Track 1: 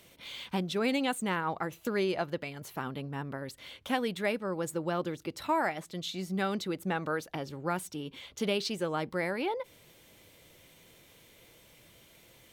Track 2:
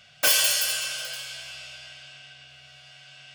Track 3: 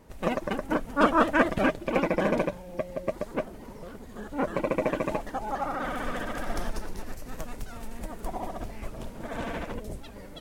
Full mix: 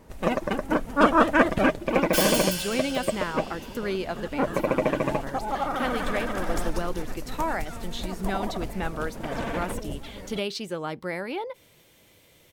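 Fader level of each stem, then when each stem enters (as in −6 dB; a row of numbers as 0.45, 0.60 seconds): +0.5, −6.0, +3.0 decibels; 1.90, 1.90, 0.00 seconds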